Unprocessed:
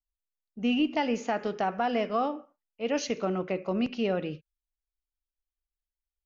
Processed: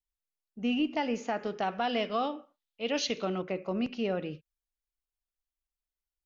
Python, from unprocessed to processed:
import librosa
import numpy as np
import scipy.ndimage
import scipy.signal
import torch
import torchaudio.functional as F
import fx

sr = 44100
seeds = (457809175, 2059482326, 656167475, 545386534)

y = fx.peak_eq(x, sr, hz=3600.0, db=12.5, octaves=0.8, at=(1.62, 3.42))
y = y * librosa.db_to_amplitude(-3.0)